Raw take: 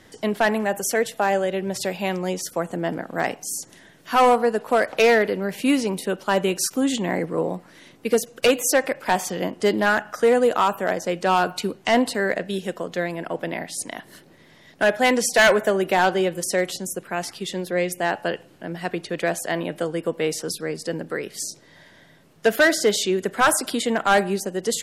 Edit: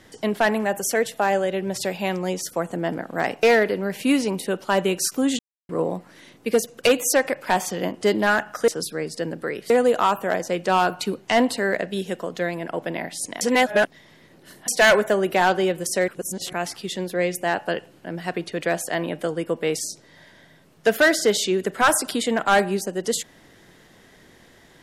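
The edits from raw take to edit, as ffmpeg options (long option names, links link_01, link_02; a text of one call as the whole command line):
ffmpeg -i in.wav -filter_complex "[0:a]asplit=11[link_01][link_02][link_03][link_04][link_05][link_06][link_07][link_08][link_09][link_10][link_11];[link_01]atrim=end=3.432[link_12];[link_02]atrim=start=5.018:end=6.98,asetpts=PTS-STARTPTS,afade=type=out:start_time=1.958:duration=0.004:curve=hsin[link_13];[link_03]atrim=start=6.98:end=7.28,asetpts=PTS-STARTPTS,volume=0[link_14];[link_04]atrim=start=7.28:end=10.272,asetpts=PTS-STARTPTS,afade=type=in:duration=0.004:curve=hsin[link_15];[link_05]atrim=start=20.358:end=21.382[link_16];[link_06]atrim=start=10.268:end=13.982[link_17];[link_07]atrim=start=13.978:end=15.252,asetpts=PTS-STARTPTS,areverse[link_18];[link_08]atrim=start=15.248:end=16.652[link_19];[link_09]atrim=start=16.648:end=17.102,asetpts=PTS-STARTPTS,areverse[link_20];[link_10]atrim=start=17.098:end=20.362[link_21];[link_11]atrim=start=21.378[link_22];[link_13][link_14][link_15]concat=n=3:v=0:a=1[link_23];[link_12][link_23]acrossfade=duration=0.004:curve1=hsin:curve2=hsin[link_24];[link_24][link_16]acrossfade=duration=0.004:curve1=hsin:curve2=hsin[link_25];[link_25][link_17]acrossfade=duration=0.004:curve1=hsin:curve2=hsin[link_26];[link_26][link_18]acrossfade=duration=0.004:curve1=hsin:curve2=hsin[link_27];[link_27][link_19]acrossfade=duration=0.004:curve1=hsin:curve2=hsin[link_28];[link_28][link_20]acrossfade=duration=0.004:curve1=hsin:curve2=hsin[link_29];[link_29][link_21]acrossfade=duration=0.004:curve1=hsin:curve2=hsin[link_30];[link_30][link_22]acrossfade=duration=0.004:curve1=hsin:curve2=hsin" out.wav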